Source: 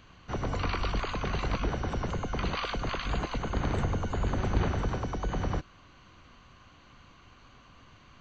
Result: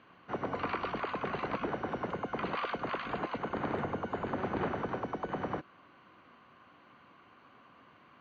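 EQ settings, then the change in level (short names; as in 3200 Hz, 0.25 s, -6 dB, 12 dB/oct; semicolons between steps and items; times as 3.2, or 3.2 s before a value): BPF 230–2100 Hz; 0.0 dB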